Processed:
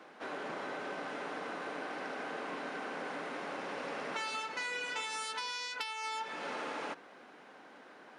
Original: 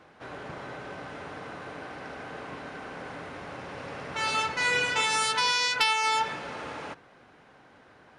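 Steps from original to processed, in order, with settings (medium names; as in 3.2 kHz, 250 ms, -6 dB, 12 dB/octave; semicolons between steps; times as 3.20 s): high-pass 210 Hz 24 dB/octave; compression 10:1, threshold -36 dBFS, peak gain reduction 18 dB; trim +1 dB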